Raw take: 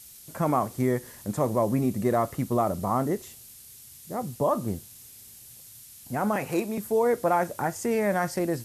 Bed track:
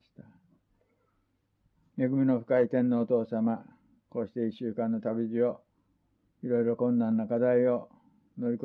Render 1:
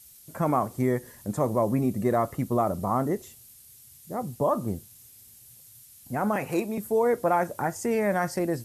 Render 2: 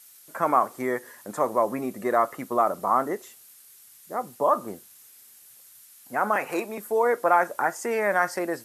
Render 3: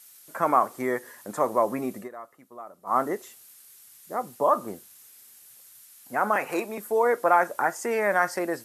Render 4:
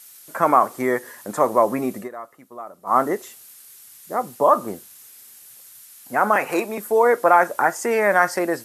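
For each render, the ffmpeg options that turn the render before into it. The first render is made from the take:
ffmpeg -i in.wav -af "afftdn=noise_reduction=6:noise_floor=-49" out.wav
ffmpeg -i in.wav -af "highpass=340,equalizer=frequency=1400:width=0.96:gain=8.5" out.wav
ffmpeg -i in.wav -filter_complex "[0:a]asplit=3[link_01][link_02][link_03];[link_01]atrim=end=2.09,asetpts=PTS-STARTPTS,afade=type=out:start_time=1.97:duration=0.12:silence=0.105925[link_04];[link_02]atrim=start=2.09:end=2.85,asetpts=PTS-STARTPTS,volume=-19.5dB[link_05];[link_03]atrim=start=2.85,asetpts=PTS-STARTPTS,afade=type=in:duration=0.12:silence=0.105925[link_06];[link_04][link_05][link_06]concat=n=3:v=0:a=1" out.wav
ffmpeg -i in.wav -af "volume=6dB,alimiter=limit=-3dB:level=0:latency=1" out.wav

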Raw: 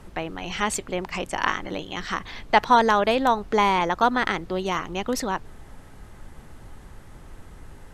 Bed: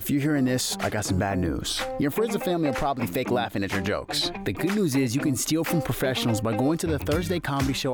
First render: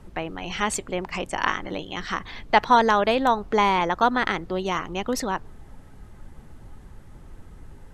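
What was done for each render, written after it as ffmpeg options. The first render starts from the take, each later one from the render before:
ffmpeg -i in.wav -af "afftdn=noise_reduction=6:noise_floor=-46" out.wav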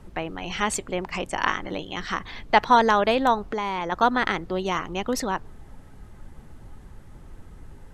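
ffmpeg -i in.wav -filter_complex "[0:a]asettb=1/sr,asplit=3[link_01][link_02][link_03];[link_01]atrim=end=3.404[link_04];[link_02]atrim=start=3.4:end=3.92,asetpts=PTS-STARTPTS,afade=type=in:duration=0.004:curve=qsin,afade=type=out:start_time=0.516:duration=0.004:curve=qsin,acompressor=threshold=-25dB:ratio=4:attack=3.2:release=140:knee=1:detection=peak[link_05];[link_03]atrim=start=3.916[link_06];[link_04][link_05]acrossfade=duration=0.004:curve1=hsin:curve2=qsin[link_07];[link_07][link_06]acrossfade=duration=0.004:curve1=qsin:curve2=hsin" out.wav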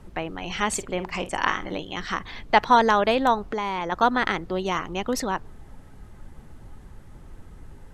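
ffmpeg -i in.wav -filter_complex "[0:a]asettb=1/sr,asplit=3[link_01][link_02][link_03];[link_01]atrim=end=0.684[link_04];[link_02]atrim=start=0.68:end=1.79,asetpts=PTS-STARTPTS,afade=type=in:duration=0.004:curve=qsin,afade=type=out:start_time=1.106:duration=0.004:curve=qsin,asplit=2[link_05][link_06];[link_06]adelay=49,volume=-13dB[link_07];[link_05][link_07]amix=inputs=2:normalize=0,atrim=end_sample=48951[link_08];[link_03]atrim=start=1.786[link_09];[link_04][link_08]acrossfade=duration=0.004:curve1=hsin:curve2=qsin[link_10];[link_10][link_09]acrossfade=duration=0.004:curve1=qsin:curve2=hsin" out.wav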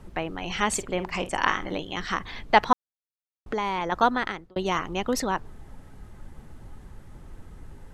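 ffmpeg -i in.wav -filter_complex "[0:a]asplit=4[link_01][link_02][link_03][link_04];[link_01]atrim=end=2.73,asetpts=PTS-STARTPTS,afade=type=out:start_time=2.726:duration=0.004:curve=hsin[link_05];[link_02]atrim=start=2.73:end=3.46,asetpts=PTS-STARTPTS,volume=0[link_06];[link_03]atrim=start=3.46:end=4.56,asetpts=PTS-STARTPTS,afade=type=in:duration=0.004:curve=hsin,afade=type=out:start_time=0.53:duration=0.57[link_07];[link_04]atrim=start=4.56,asetpts=PTS-STARTPTS,afade=type=in:duration=0.004:curve=hsin[link_08];[link_05][link_06][link_07][link_08]concat=n=4:v=0:a=1" out.wav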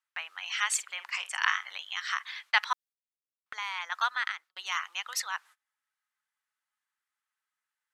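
ffmpeg -i in.wav -af "highpass=frequency=1300:width=0.5412,highpass=frequency=1300:width=1.3066,agate=range=-26dB:threshold=-52dB:ratio=16:detection=peak" out.wav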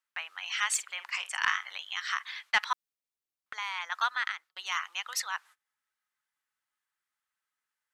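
ffmpeg -i in.wav -af "asoftclip=type=tanh:threshold=-12dB" out.wav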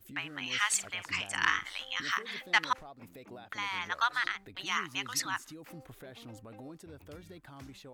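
ffmpeg -i in.wav -i bed.wav -filter_complex "[1:a]volume=-24dB[link_01];[0:a][link_01]amix=inputs=2:normalize=0" out.wav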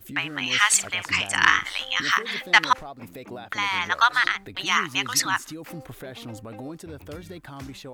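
ffmpeg -i in.wav -af "volume=10.5dB,alimiter=limit=-3dB:level=0:latency=1" out.wav

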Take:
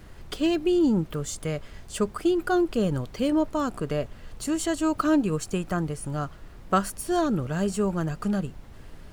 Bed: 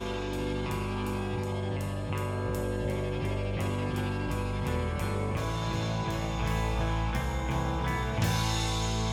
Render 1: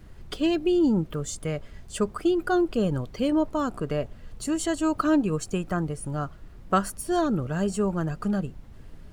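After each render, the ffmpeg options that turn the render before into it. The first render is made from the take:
ffmpeg -i in.wav -af "afftdn=noise_reduction=6:noise_floor=-45" out.wav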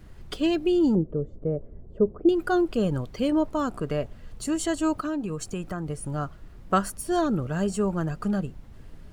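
ffmpeg -i in.wav -filter_complex "[0:a]asettb=1/sr,asplit=3[link_01][link_02][link_03];[link_01]atrim=end=0.954[link_04];[link_02]atrim=start=0.95:end=2.29,asetpts=PTS-STARTPTS,afade=type=in:duration=0.004:curve=qsin,afade=type=out:start_time=1.336:duration=0.004:curve=qsin,lowpass=frequency=460:width_type=q:width=1.8[link_05];[link_03]atrim=start=2.286[link_06];[link_04][link_05]acrossfade=duration=0.004:curve1=hsin:curve2=qsin[link_07];[link_07][link_06]acrossfade=duration=0.004:curve1=qsin:curve2=hsin,asettb=1/sr,asplit=3[link_08][link_09][link_10];[link_08]atrim=end=4.934[link_11];[link_09]atrim=start=4.93:end=5.88,asetpts=PTS-STARTPTS,afade=type=in:duration=0.004:curve=qsin,afade=type=out:start_time=0.946:duration=0.004:curve=qsin,acompressor=threshold=-28dB:ratio=3:attack=3.2:release=140:knee=1:detection=peak[link_12];[link_10]atrim=start=5.876[link_13];[link_11][link_12]acrossfade=duration=0.004:curve1=hsin:curve2=qsin[link_14];[link_14][link_13]acrossfade=duration=0.004:curve1=qsin:curve2=hsin" out.wav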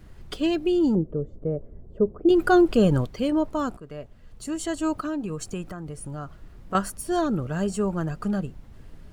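ffmpeg -i in.wav -filter_complex "[0:a]asettb=1/sr,asplit=3[link_01][link_02][link_03];[link_01]atrim=end=2.304[link_04];[link_02]atrim=start=2.3:end=3.07,asetpts=PTS-STARTPTS,afade=type=in:duration=0.004:curve=qsin,afade=type=out:start_time=0.766:duration=0.004:curve=qsin,acontrast=55[link_05];[link_03]atrim=start=3.066[link_06];[link_04][link_05]acrossfade=duration=0.004:curve1=hsin:curve2=qsin[link_07];[link_07][link_06]acrossfade=duration=0.004:curve1=qsin:curve2=hsin,asettb=1/sr,asplit=3[link_08][link_09][link_10];[link_08]atrim=end=5.624[link_11];[link_09]atrim=start=5.62:end=6.75,asetpts=PTS-STARTPTS,afade=type=in:duration=0.004:curve=qsin,afade=type=out:start_time=1.126:duration=0.004:curve=qsin,acompressor=threshold=-34dB:ratio=2:attack=3.2:release=140:knee=1:detection=peak[link_12];[link_10]atrim=start=6.746[link_13];[link_11][link_12]acrossfade=duration=0.004:curve1=hsin:curve2=qsin[link_14];[link_14][link_13]acrossfade=duration=0.004:curve1=qsin:curve2=hsin,asplit=2[link_15][link_16];[link_15]atrim=end=3.77,asetpts=PTS-STARTPTS,afade=type=out:start_time=3.766:duration=0.004:curve=hsin:silence=0.188365[link_17];[link_16]atrim=start=3.77,asetpts=PTS-STARTPTS,afade=type=in:duration=1.26:silence=0.188365[link_18];[link_17][link_18]concat=n=2:v=0:a=1" out.wav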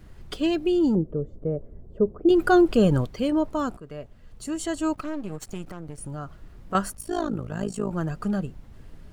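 ffmpeg -i in.wav -filter_complex "[0:a]asettb=1/sr,asplit=3[link_01][link_02][link_03];[link_01]atrim=end=4.934[link_04];[link_02]atrim=start=4.93:end=5.98,asetpts=PTS-STARTPTS,afade=type=in:duration=0.004:curve=qsin,afade=type=out:start_time=1.046:duration=0.004:curve=qsin,aeval=exprs='if(lt(val(0),0),0.251*val(0),val(0))':channel_layout=same[link_05];[link_03]atrim=start=5.976[link_06];[link_04][link_05]acrossfade=duration=0.004:curve1=hsin:curve2=qsin[link_07];[link_07][link_06]acrossfade=duration=0.004:curve1=qsin:curve2=hsin,asplit=3[link_08][link_09][link_10];[link_08]afade=type=out:start_time=6.92:duration=0.02[link_11];[link_09]tremolo=f=54:d=0.857,afade=type=in:start_time=6.92:duration=0.02,afade=type=out:start_time=7.9:duration=0.02[link_12];[link_10]afade=type=in:start_time=7.9:duration=0.02[link_13];[link_11][link_12][link_13]amix=inputs=3:normalize=0" out.wav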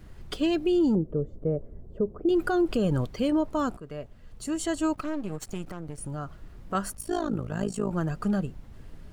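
ffmpeg -i in.wav -af "alimiter=limit=-17dB:level=0:latency=1:release=143" out.wav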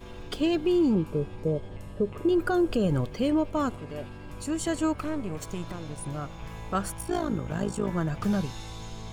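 ffmpeg -i in.wav -i bed.wav -filter_complex "[1:a]volume=-11.5dB[link_01];[0:a][link_01]amix=inputs=2:normalize=0" out.wav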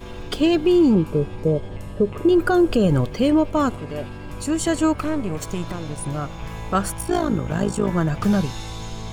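ffmpeg -i in.wav -af "volume=7.5dB" out.wav

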